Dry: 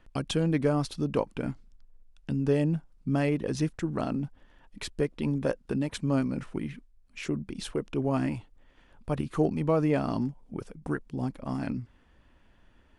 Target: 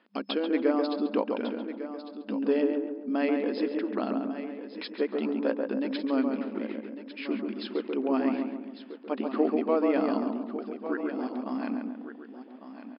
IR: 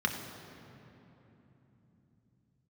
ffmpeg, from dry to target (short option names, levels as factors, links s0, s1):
-filter_complex "[0:a]asplit=2[s0][s1];[s1]adelay=138,lowpass=f=1500:p=1,volume=0.708,asplit=2[s2][s3];[s3]adelay=138,lowpass=f=1500:p=1,volume=0.51,asplit=2[s4][s5];[s5]adelay=138,lowpass=f=1500:p=1,volume=0.51,asplit=2[s6][s7];[s7]adelay=138,lowpass=f=1500:p=1,volume=0.51,asplit=2[s8][s9];[s9]adelay=138,lowpass=f=1500:p=1,volume=0.51,asplit=2[s10][s11];[s11]adelay=138,lowpass=f=1500:p=1,volume=0.51,asplit=2[s12][s13];[s13]adelay=138,lowpass=f=1500:p=1,volume=0.51[s14];[s2][s4][s6][s8][s10][s12][s14]amix=inputs=7:normalize=0[s15];[s0][s15]amix=inputs=2:normalize=0,afftfilt=real='re*between(b*sr/4096,200,5200)':imag='im*between(b*sr/4096,200,5200)':win_size=4096:overlap=0.75,asplit=2[s16][s17];[s17]aecho=0:1:1151:0.251[s18];[s16][s18]amix=inputs=2:normalize=0"